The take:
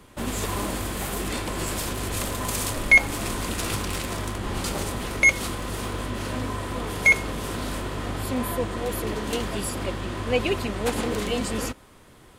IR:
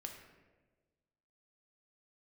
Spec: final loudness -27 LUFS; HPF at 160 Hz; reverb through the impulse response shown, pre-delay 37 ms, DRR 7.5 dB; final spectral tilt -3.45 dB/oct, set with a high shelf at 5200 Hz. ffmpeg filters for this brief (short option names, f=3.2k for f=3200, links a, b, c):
-filter_complex "[0:a]highpass=160,highshelf=f=5.2k:g=-6,asplit=2[a][b];[1:a]atrim=start_sample=2205,adelay=37[c];[b][c]afir=irnorm=-1:irlink=0,volume=-4dB[d];[a][d]amix=inputs=2:normalize=0,volume=-1.5dB"